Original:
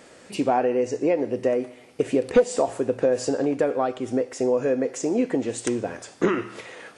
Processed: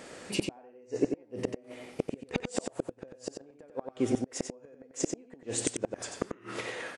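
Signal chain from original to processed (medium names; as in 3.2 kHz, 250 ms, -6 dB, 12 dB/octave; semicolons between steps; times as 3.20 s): inverted gate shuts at -16 dBFS, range -34 dB; on a send: delay 92 ms -6 dB; on the sum: trim +1.5 dB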